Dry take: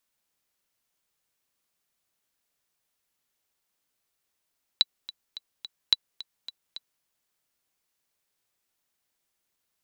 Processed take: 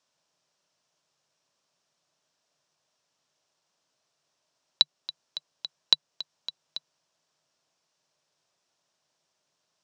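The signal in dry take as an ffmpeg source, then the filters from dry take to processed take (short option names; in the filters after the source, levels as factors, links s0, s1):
-f lavfi -i "aevalsrc='pow(10,(-5.5-18.5*gte(mod(t,4*60/215),60/215))/20)*sin(2*PI*3950*mod(t,60/215))*exp(-6.91*mod(t,60/215)/0.03)':d=2.23:s=44100"
-filter_complex "[0:a]asplit=2[s0][s1];[s1]alimiter=limit=0.2:level=0:latency=1:release=381,volume=0.75[s2];[s0][s2]amix=inputs=2:normalize=0,highpass=120,equalizer=f=150:t=q:w=4:g=8,equalizer=f=210:t=q:w=4:g=-3,equalizer=f=620:t=q:w=4:g=8,equalizer=f=1000:t=q:w=4:g=4,equalizer=f=2100:t=q:w=4:g=-5,equalizer=f=5500:t=q:w=4:g=5,lowpass=f=7100:w=0.5412,lowpass=f=7100:w=1.3066"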